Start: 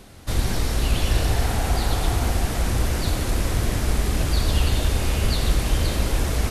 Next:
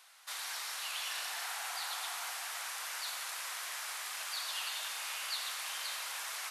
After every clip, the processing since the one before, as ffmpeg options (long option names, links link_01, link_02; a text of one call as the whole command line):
ffmpeg -i in.wav -af "highpass=frequency=970:width=0.5412,highpass=frequency=970:width=1.3066,volume=-7.5dB" out.wav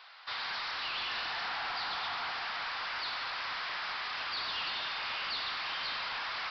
ffmpeg -i in.wav -af "equalizer=frequency=1100:width=0.97:gain=3.5,aresample=11025,asoftclip=type=tanh:threshold=-39dB,aresample=44100,volume=7dB" out.wav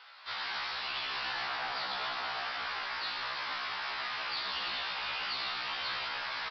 ffmpeg -i in.wav -filter_complex "[0:a]asplit=9[link_01][link_02][link_03][link_04][link_05][link_06][link_07][link_08][link_09];[link_02]adelay=82,afreqshift=-100,volume=-10.5dB[link_10];[link_03]adelay=164,afreqshift=-200,volume=-14.4dB[link_11];[link_04]adelay=246,afreqshift=-300,volume=-18.3dB[link_12];[link_05]adelay=328,afreqshift=-400,volume=-22.1dB[link_13];[link_06]adelay=410,afreqshift=-500,volume=-26dB[link_14];[link_07]adelay=492,afreqshift=-600,volume=-29.9dB[link_15];[link_08]adelay=574,afreqshift=-700,volume=-33.8dB[link_16];[link_09]adelay=656,afreqshift=-800,volume=-37.6dB[link_17];[link_01][link_10][link_11][link_12][link_13][link_14][link_15][link_16][link_17]amix=inputs=9:normalize=0,afftfilt=real='re*1.73*eq(mod(b,3),0)':imag='im*1.73*eq(mod(b,3),0)':win_size=2048:overlap=0.75,volume=2dB" out.wav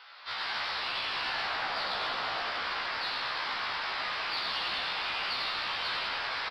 ffmpeg -i in.wav -filter_complex "[0:a]asplit=2[link_01][link_02];[link_02]asoftclip=type=tanh:threshold=-33.5dB,volume=-11dB[link_03];[link_01][link_03]amix=inputs=2:normalize=0,asplit=8[link_04][link_05][link_06][link_07][link_08][link_09][link_10][link_11];[link_05]adelay=100,afreqshift=-110,volume=-6dB[link_12];[link_06]adelay=200,afreqshift=-220,volume=-11.2dB[link_13];[link_07]adelay=300,afreqshift=-330,volume=-16.4dB[link_14];[link_08]adelay=400,afreqshift=-440,volume=-21.6dB[link_15];[link_09]adelay=500,afreqshift=-550,volume=-26.8dB[link_16];[link_10]adelay=600,afreqshift=-660,volume=-32dB[link_17];[link_11]adelay=700,afreqshift=-770,volume=-37.2dB[link_18];[link_04][link_12][link_13][link_14][link_15][link_16][link_17][link_18]amix=inputs=8:normalize=0" out.wav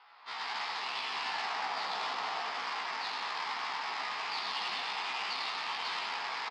ffmpeg -i in.wav -af "adynamicsmooth=sensitivity=3.5:basefreq=1600,highpass=frequency=190:width=0.5412,highpass=frequency=190:width=1.3066,equalizer=frequency=220:width_type=q:width=4:gain=-5,equalizer=frequency=330:width_type=q:width=4:gain=-7,equalizer=frequency=560:width_type=q:width=4:gain=-10,equalizer=frequency=870:width_type=q:width=4:gain=4,equalizer=frequency=1500:width_type=q:width=4:gain=-7,equalizer=frequency=5100:width_type=q:width=4:gain=9,lowpass=frequency=7200:width=0.5412,lowpass=frequency=7200:width=1.3066" out.wav